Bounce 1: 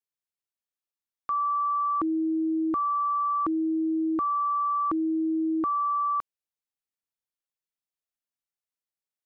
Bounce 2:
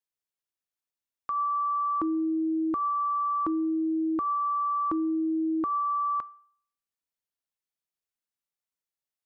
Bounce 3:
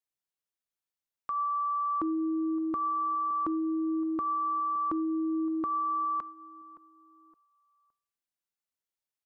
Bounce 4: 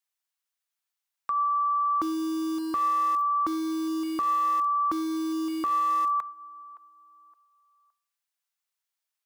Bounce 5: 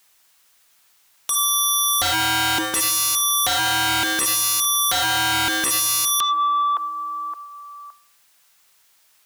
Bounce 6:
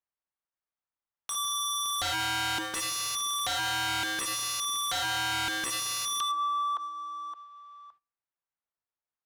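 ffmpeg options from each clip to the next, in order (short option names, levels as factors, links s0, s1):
-af "bandreject=f=388.7:t=h:w=4,bandreject=f=777.4:t=h:w=4,bandreject=f=1166.1:t=h:w=4,bandreject=f=1554.8:t=h:w=4,bandreject=f=1943.5:t=h:w=4,bandreject=f=2332.2:t=h:w=4,bandreject=f=2720.9:t=h:w=4,bandreject=f=3109.6:t=h:w=4,volume=0.891"
-filter_complex "[0:a]asplit=2[s0][s1];[s1]adelay=567,lowpass=f=1400:p=1,volume=0.126,asplit=2[s2][s3];[s3]adelay=567,lowpass=f=1400:p=1,volume=0.39,asplit=2[s4][s5];[s5]adelay=567,lowpass=f=1400:p=1,volume=0.39[s6];[s0][s2][s4][s6]amix=inputs=4:normalize=0,volume=0.75"
-filter_complex "[0:a]acrossover=split=670[s0][s1];[s0]acrusher=bits=6:mix=0:aa=0.000001[s2];[s1]acontrast=45[s3];[s2][s3]amix=inputs=2:normalize=0"
-filter_complex "[0:a]asplit=2[s0][s1];[s1]alimiter=level_in=1.41:limit=0.0631:level=0:latency=1:release=84,volume=0.708,volume=0.75[s2];[s0][s2]amix=inputs=2:normalize=0,aeval=exprs='0.141*sin(PI/2*8.91*val(0)/0.141)':c=same"
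-af "agate=range=0.178:threshold=0.00447:ratio=16:detection=peak,equalizer=f=330:t=o:w=2.4:g=-3,adynamicsmooth=sensitivity=7.5:basefreq=1200,volume=0.355"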